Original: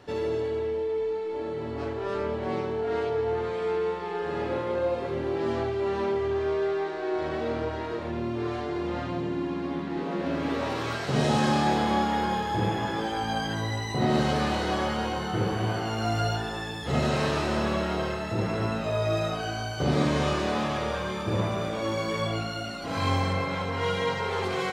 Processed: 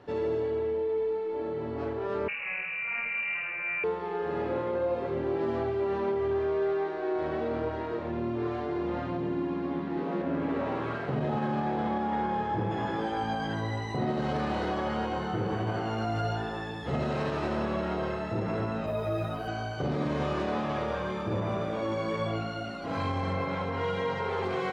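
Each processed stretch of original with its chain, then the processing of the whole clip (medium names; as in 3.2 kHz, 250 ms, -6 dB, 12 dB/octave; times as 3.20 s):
2.28–3.84 s: CVSD coder 64 kbps + frequency inversion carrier 2.8 kHz + band-stop 270 Hz, Q 6.4
10.22–12.71 s: median filter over 9 samples + distance through air 94 m + doubling 46 ms -10.5 dB
18.86–19.48 s: careless resampling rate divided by 3×, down none, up hold + bass shelf 130 Hz +10 dB + three-phase chorus
whole clip: low-pass 1.6 kHz 6 dB/octave; bass shelf 82 Hz -6.5 dB; peak limiter -21.5 dBFS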